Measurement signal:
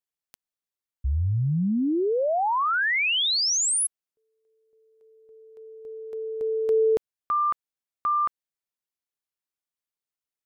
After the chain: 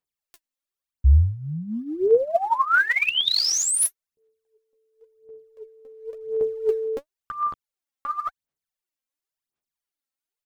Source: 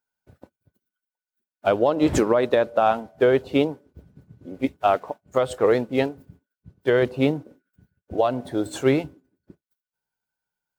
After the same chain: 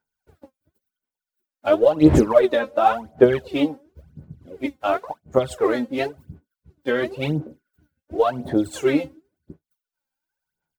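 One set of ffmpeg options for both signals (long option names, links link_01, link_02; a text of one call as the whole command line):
ffmpeg -i in.wav -filter_complex "[0:a]asplit=2[link_01][link_02];[link_02]adelay=13,volume=-6dB[link_03];[link_01][link_03]amix=inputs=2:normalize=0,aphaser=in_gain=1:out_gain=1:delay=3.8:decay=0.74:speed=0.94:type=sinusoidal,volume=-3.5dB" out.wav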